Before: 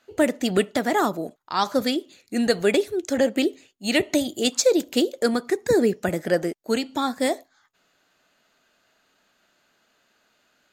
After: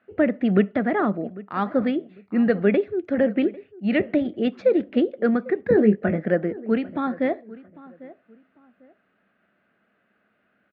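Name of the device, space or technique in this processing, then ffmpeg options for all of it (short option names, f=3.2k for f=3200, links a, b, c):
bass cabinet: -filter_complex "[0:a]lowpass=6.4k,highpass=64,equalizer=f=91:t=q:w=4:g=4,equalizer=f=200:t=q:w=4:g=9,equalizer=f=930:t=q:w=4:g=-9,lowpass=f=2.2k:w=0.5412,lowpass=f=2.2k:w=1.3066,asettb=1/sr,asplit=3[a][b][c];[a]atrim=end=5.694[d];[b]atrim=start=5.69:end=6.25,asetpts=PTS-STARTPTS,afade=t=in:d=0.004:c=qsin,afade=t=out:st=0.556:d=0.004:c=qsin,asplit=2[e][f];[f]adelay=19,volume=-5.5dB[g];[e][g]amix=inputs=2:normalize=0,atrim=end_sample=24696[h];[c]atrim=start=6.246[i];[d][h]acrossfade=d=0.004:c1=hsin:c2=qsin[j];[j][i]acrossfade=d=0.004:c1=qsin:c2=hsin,asplit=2[k][l];[l]adelay=798,lowpass=f=1.7k:p=1,volume=-19dB,asplit=2[m][n];[n]adelay=798,lowpass=f=1.7k:p=1,volume=0.28[o];[k][m][o]amix=inputs=3:normalize=0"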